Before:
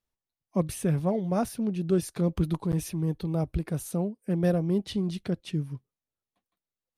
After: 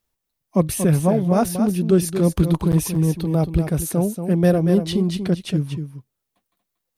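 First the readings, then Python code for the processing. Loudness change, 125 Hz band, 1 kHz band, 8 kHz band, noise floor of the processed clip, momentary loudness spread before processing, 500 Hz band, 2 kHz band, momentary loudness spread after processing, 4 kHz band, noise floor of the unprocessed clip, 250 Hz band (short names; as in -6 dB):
+9.0 dB, +9.0 dB, +9.0 dB, +12.0 dB, -80 dBFS, 6 LU, +9.0 dB, +9.5 dB, 6 LU, +9.5 dB, under -85 dBFS, +9.0 dB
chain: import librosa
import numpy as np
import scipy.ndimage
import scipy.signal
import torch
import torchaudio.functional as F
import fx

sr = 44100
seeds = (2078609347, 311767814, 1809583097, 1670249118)

y = fx.high_shelf(x, sr, hz=11000.0, db=8.0)
y = y + 10.0 ** (-8.5 / 20.0) * np.pad(y, (int(234 * sr / 1000.0), 0))[:len(y)]
y = y * librosa.db_to_amplitude(8.5)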